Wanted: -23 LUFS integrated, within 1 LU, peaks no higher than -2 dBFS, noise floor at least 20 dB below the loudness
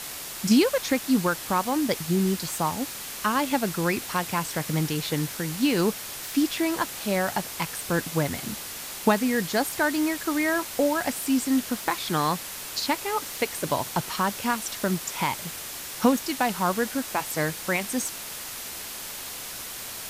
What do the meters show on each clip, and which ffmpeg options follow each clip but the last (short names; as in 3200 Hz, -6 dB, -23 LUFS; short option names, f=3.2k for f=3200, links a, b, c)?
noise floor -37 dBFS; noise floor target -47 dBFS; loudness -26.5 LUFS; peak -8.5 dBFS; loudness target -23.0 LUFS
-> -af "afftdn=nr=10:nf=-37"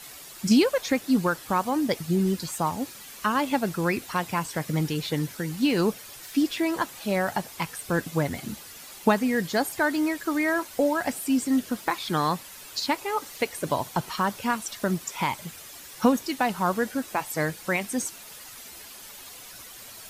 noise floor -44 dBFS; noise floor target -47 dBFS
-> -af "afftdn=nr=6:nf=-44"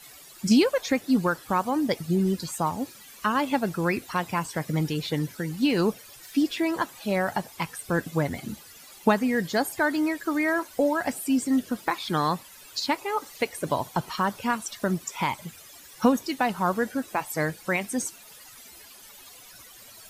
noise floor -49 dBFS; loudness -27.0 LUFS; peak -8.5 dBFS; loudness target -23.0 LUFS
-> -af "volume=4dB"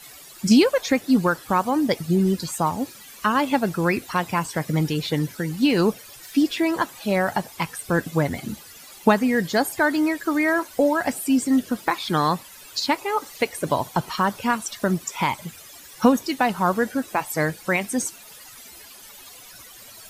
loudness -23.0 LUFS; peak -4.5 dBFS; noise floor -45 dBFS